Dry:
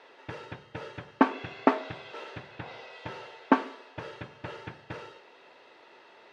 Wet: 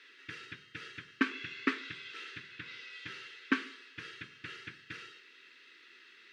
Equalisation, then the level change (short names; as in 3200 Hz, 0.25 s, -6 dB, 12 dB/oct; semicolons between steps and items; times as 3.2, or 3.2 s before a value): Chebyshev band-stop 310–1700 Hz, order 2; tilt shelf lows -5 dB, about 720 Hz; low shelf 180 Hz -6 dB; -2.0 dB